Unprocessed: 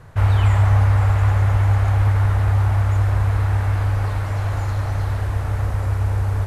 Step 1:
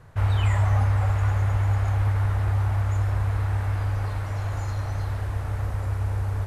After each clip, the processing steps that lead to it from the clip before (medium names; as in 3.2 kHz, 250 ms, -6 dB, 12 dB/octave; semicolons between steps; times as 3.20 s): spectral noise reduction 6 dB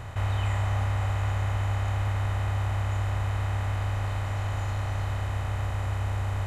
spectral levelling over time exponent 0.4; trim -7.5 dB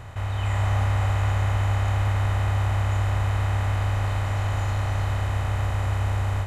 level rider gain up to 6 dB; trim -1.5 dB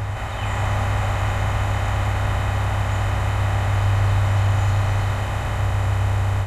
reverse echo 861 ms -7 dB; trim +4 dB